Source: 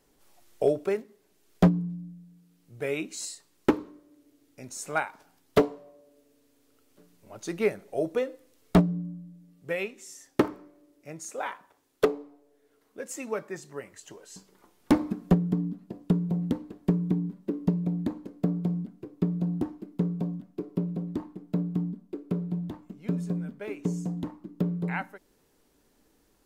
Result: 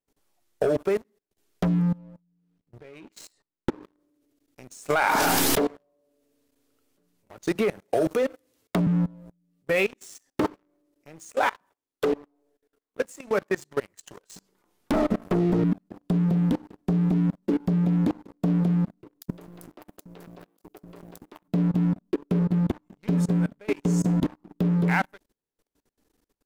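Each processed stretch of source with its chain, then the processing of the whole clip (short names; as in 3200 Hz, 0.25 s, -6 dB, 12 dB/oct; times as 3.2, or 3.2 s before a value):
1.98–3.83 LPF 1700 Hz 6 dB/oct + compressor 20:1, threshold -33 dBFS
4.9–5.63 low shelf 180 Hz -8 dB + backwards sustainer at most 30 dB/s
7.55–8.87 HPF 44 Hz 24 dB/oct + gate with hold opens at -52 dBFS, closes at -56 dBFS + three-band squash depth 70%
14.93–15.64 minimum comb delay 4.6 ms + small resonant body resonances 350/670/1300/1900 Hz, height 11 dB, ringing for 30 ms
19.21–21.48 half-wave gain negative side -7 dB + RIAA curve recording + three bands offset in time highs, lows, mids 60/160 ms, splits 300/4500 Hz
whole clip: sample leveller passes 3; level quantiser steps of 24 dB; gain +2.5 dB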